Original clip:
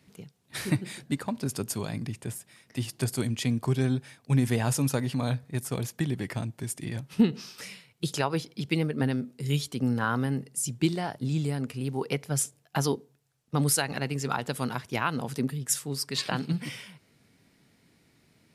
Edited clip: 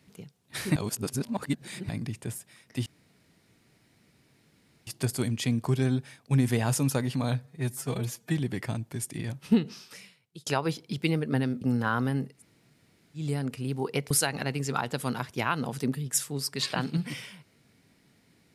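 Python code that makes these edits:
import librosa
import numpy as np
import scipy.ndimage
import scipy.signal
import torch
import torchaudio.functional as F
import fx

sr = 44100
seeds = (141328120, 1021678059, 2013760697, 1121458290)

y = fx.edit(x, sr, fx.reverse_span(start_s=0.76, length_s=1.13),
    fx.insert_room_tone(at_s=2.86, length_s=2.01),
    fx.stretch_span(start_s=5.42, length_s=0.63, factor=1.5),
    fx.fade_out_to(start_s=7.13, length_s=1.01, floor_db=-22.5),
    fx.cut(start_s=9.29, length_s=0.49),
    fx.room_tone_fill(start_s=10.51, length_s=0.87, crossfade_s=0.16),
    fx.cut(start_s=12.27, length_s=1.39), tone=tone)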